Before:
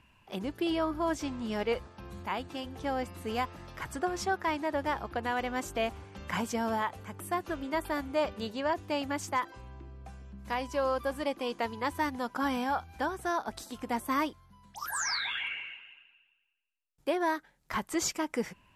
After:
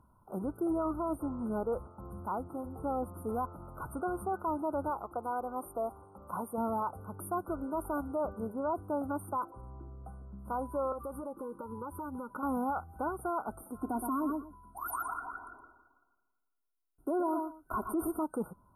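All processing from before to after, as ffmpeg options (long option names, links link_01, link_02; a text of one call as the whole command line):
ffmpeg -i in.wav -filter_complex "[0:a]asettb=1/sr,asplit=3[link_01][link_02][link_03];[link_01]atrim=end=4.904[link_04];[link_02]atrim=start=4.9:end=6.58,asetpts=PTS-STARTPTS,afade=type=in:duration=0.004:curve=qsin,afade=type=out:start_time=1.676:duration=0.004:curve=qsin,asuperstop=centerf=1800:order=4:qfactor=1.6,lowshelf=frequency=290:gain=-12[link_05];[link_03]atrim=start=6.576[link_06];[link_04][link_05]acrossfade=duration=0.004:curve1=hsin:curve2=qsin[link_07];[link_07][link_06]acrossfade=duration=0.004:curve1=qsin:curve2=hsin,asettb=1/sr,asplit=3[link_08][link_09][link_10];[link_08]atrim=end=10.924[link_11];[link_09]atrim=start=10.92:end=12.43,asetpts=PTS-STARTPTS,afade=type=in:duration=0.004:curve=qsin,afade=type=out:start_time=1.506:duration=0.004:curve=qsin,acompressor=threshold=-35dB:ratio=10:attack=3.2:release=140:knee=1:detection=peak,asuperstop=centerf=700:order=20:qfactor=4.8[link_12];[link_10]atrim=start=12.426[link_13];[link_11][link_12]acrossfade=duration=0.004:curve1=hsin:curve2=qsin[link_14];[link_14][link_13]acrossfade=duration=0.004:curve1=qsin:curve2=hsin,asettb=1/sr,asplit=3[link_15][link_16][link_17];[link_15]atrim=end=13.814[link_18];[link_16]atrim=start=13.81:end=18.19,asetpts=PTS-STARTPTS,afade=type=in:duration=0.004:curve=qsin,afade=type=out:start_time=4.376:duration=0.004:curve=qsin,equalizer=frequency=260:width_type=o:width=0.95:gain=4.5,aecho=1:1:2.9:0.72,atrim=end_sample=193158,aecho=1:1:118|236:0.299|0.0508,atrim=end_sample=193158[link_19];[link_17]atrim=start=18.186[link_20];[link_18][link_19]acrossfade=duration=0.004:curve1=hsin:curve2=qsin[link_21];[link_21][link_20]acrossfade=duration=0.004:curve1=qsin:curve2=hsin,afftfilt=real='re*(1-between(b*sr/4096,1500,8700))':imag='im*(1-between(b*sr/4096,1500,8700))':win_size=4096:overlap=0.75,alimiter=level_in=1.5dB:limit=-24dB:level=0:latency=1:release=13,volume=-1.5dB" out.wav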